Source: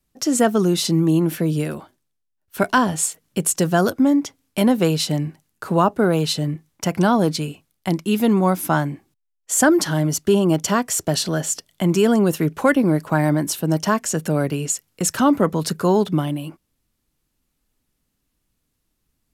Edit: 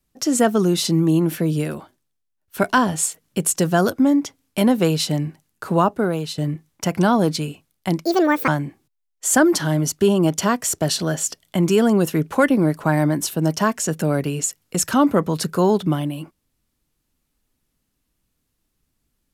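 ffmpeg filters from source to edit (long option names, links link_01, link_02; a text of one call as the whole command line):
ffmpeg -i in.wav -filter_complex "[0:a]asplit=4[link_01][link_02][link_03][link_04];[link_01]atrim=end=6.38,asetpts=PTS-STARTPTS,afade=type=out:start_time=5.78:duration=0.6:silence=0.316228[link_05];[link_02]atrim=start=6.38:end=8.054,asetpts=PTS-STARTPTS,afade=type=in:duration=0.004:curve=hsin:silence=0.316228[link_06];[link_03]atrim=start=8.05:end=8.74,asetpts=PTS-STARTPTS,asetrate=71001,aresample=44100[link_07];[link_04]atrim=start=8.736[link_08];[link_05][link_06]concat=n=2:v=0:a=1[link_09];[link_09][link_07]acrossfade=duration=0.004:curve1=hsin:curve2=hsin[link_10];[link_10][link_08]acrossfade=duration=0.004:curve1=hsin:curve2=hsin" out.wav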